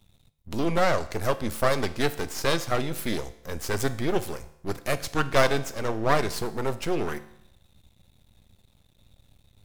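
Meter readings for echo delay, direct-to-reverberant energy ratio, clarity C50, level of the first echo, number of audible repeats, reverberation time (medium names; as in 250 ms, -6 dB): no echo, 11.5 dB, 15.5 dB, no echo, no echo, 0.75 s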